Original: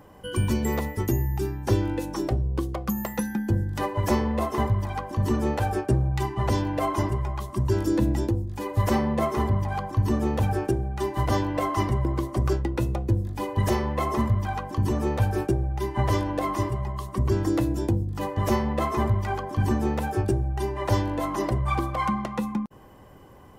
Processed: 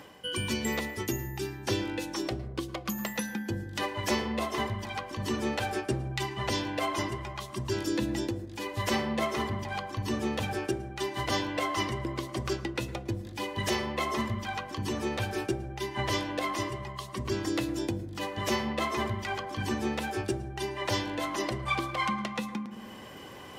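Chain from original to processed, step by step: reverb RT60 0.85 s, pre-delay 0.106 s, DRR 15 dB; reverse; upward compressor, threshold -29 dBFS; reverse; weighting filter D; gain -5 dB

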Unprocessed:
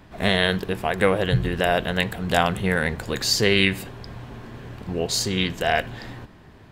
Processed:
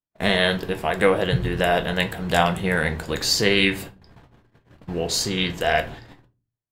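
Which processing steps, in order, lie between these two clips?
gate -34 dBFS, range -50 dB; low shelf 87 Hz -5 dB; shoebox room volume 120 m³, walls furnished, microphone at 0.62 m

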